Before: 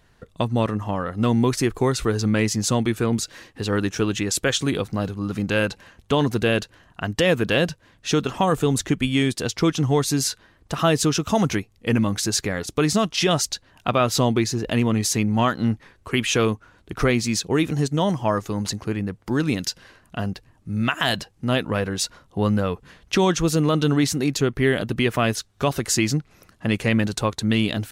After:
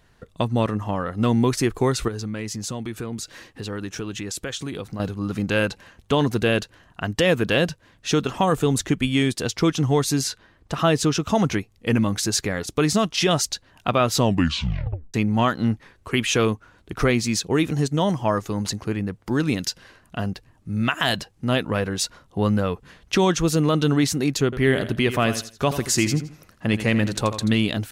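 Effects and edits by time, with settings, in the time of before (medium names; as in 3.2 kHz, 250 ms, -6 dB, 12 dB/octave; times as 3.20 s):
2.08–5.00 s: compression 2.5:1, threshold -30 dBFS
10.21–11.60 s: treble shelf 7.5 kHz -7 dB
14.20 s: tape stop 0.94 s
24.44–27.54 s: feedback delay 83 ms, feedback 27%, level -11.5 dB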